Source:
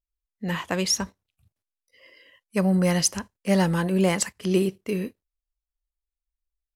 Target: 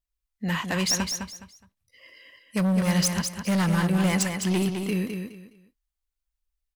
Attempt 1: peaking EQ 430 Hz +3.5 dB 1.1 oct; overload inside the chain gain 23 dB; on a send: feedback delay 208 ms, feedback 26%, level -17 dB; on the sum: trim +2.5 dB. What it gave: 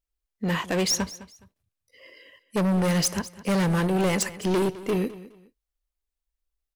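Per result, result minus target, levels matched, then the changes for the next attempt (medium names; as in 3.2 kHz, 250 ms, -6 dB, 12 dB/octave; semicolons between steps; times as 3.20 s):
echo-to-direct -11 dB; 500 Hz band +5.5 dB
change: feedback delay 208 ms, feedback 26%, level -6 dB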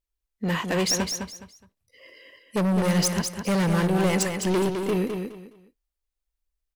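500 Hz band +5.5 dB
change: peaking EQ 430 Hz -7 dB 1.1 oct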